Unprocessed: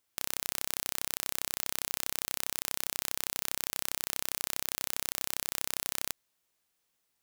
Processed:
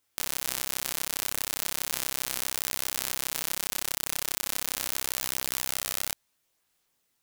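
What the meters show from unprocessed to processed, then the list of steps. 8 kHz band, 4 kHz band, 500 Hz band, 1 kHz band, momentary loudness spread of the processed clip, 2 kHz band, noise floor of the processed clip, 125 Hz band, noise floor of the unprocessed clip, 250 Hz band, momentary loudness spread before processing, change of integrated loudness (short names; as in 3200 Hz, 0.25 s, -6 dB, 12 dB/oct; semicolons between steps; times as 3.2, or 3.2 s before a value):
+4.0 dB, +4.0 dB, +4.0 dB, +4.0 dB, 0 LU, +4.0 dB, -75 dBFS, +4.0 dB, -79 dBFS, +4.0 dB, 0 LU, +3.5 dB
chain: chorus voices 2, 0.37 Hz, delay 21 ms, depth 4.4 ms; gain +7 dB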